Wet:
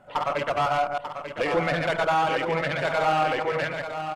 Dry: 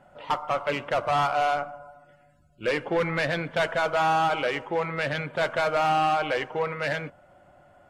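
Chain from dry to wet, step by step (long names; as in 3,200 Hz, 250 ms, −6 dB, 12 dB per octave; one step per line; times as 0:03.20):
delay that plays each chunk backwards 186 ms, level −4 dB
in parallel at −1 dB: brickwall limiter −22 dBFS, peak gain reduction 8.5 dB
on the sum: tempo change 1.9×
single-tap delay 891 ms −8.5 dB
level −3.5 dB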